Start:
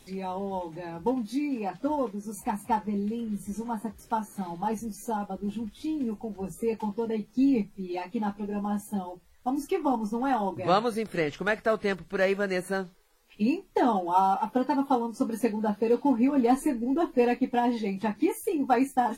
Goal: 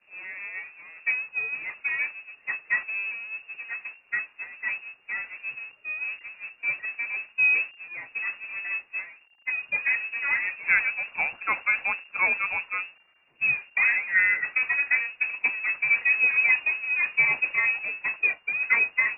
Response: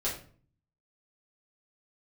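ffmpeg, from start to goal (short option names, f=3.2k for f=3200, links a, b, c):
-af "aeval=exprs='val(0)+0.5*0.0355*sgn(val(0))':c=same,agate=range=-33dB:threshold=-21dB:ratio=3:detection=peak,lowpass=f=2.4k:t=q:w=0.5098,lowpass=f=2.4k:t=q:w=0.6013,lowpass=f=2.4k:t=q:w=0.9,lowpass=f=2.4k:t=q:w=2.563,afreqshift=-2800"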